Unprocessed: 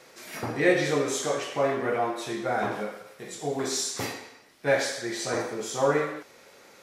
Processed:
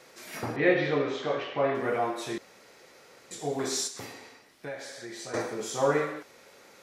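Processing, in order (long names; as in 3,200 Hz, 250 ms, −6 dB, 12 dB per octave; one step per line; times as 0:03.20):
0:00.56–0:01.75: low-pass filter 3,800 Hz 24 dB per octave
0:02.38–0:03.31: fill with room tone
0:03.87–0:05.34: downward compressor 3 to 1, threshold −39 dBFS, peak gain reduction 15.5 dB
level −1.5 dB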